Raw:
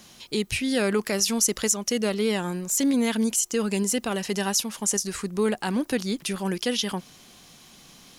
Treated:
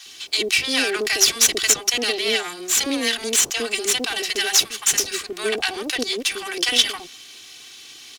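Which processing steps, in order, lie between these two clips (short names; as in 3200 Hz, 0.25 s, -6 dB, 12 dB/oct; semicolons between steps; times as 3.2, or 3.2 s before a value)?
minimum comb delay 2.6 ms; weighting filter D; bands offset in time highs, lows 60 ms, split 700 Hz; gain +2.5 dB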